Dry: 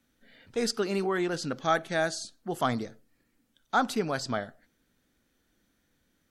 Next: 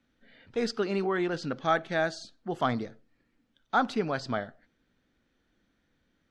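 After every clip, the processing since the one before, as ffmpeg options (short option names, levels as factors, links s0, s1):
-af "lowpass=4000"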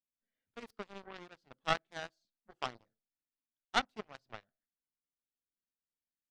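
-af "aeval=exprs='0.224*(cos(1*acos(clip(val(0)/0.224,-1,1)))-cos(1*PI/2))+0.0891*(cos(3*acos(clip(val(0)/0.224,-1,1)))-cos(3*PI/2))+0.00794*(cos(5*acos(clip(val(0)/0.224,-1,1)))-cos(5*PI/2))':c=same"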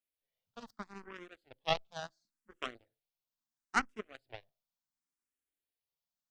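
-filter_complex "[0:a]asplit=2[s0][s1];[s1]afreqshift=0.72[s2];[s0][s2]amix=inputs=2:normalize=1,volume=1.41"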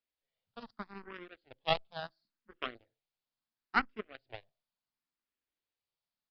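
-af "aresample=11025,aresample=44100,volume=1.19"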